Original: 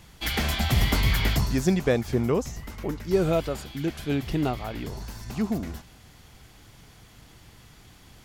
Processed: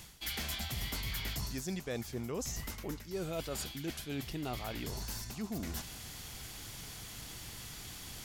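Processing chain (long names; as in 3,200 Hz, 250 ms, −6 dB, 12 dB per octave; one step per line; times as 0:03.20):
high-shelf EQ 3,000 Hz +11.5 dB
reversed playback
downward compressor 6 to 1, threshold −38 dBFS, peak gain reduction 20 dB
reversed playback
level +1 dB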